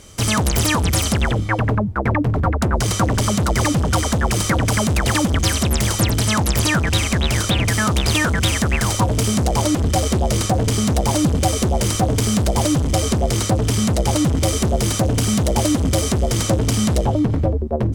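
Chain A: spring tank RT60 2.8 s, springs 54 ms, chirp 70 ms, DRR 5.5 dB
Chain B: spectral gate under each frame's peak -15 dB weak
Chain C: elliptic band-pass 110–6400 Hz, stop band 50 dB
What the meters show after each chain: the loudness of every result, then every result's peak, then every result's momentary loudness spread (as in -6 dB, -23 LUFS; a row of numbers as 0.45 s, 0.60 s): -17.5 LUFS, -24.5 LUFS, -20.0 LUFS; -2.5 dBFS, -7.0 dBFS, -4.5 dBFS; 2 LU, 7 LU, 2 LU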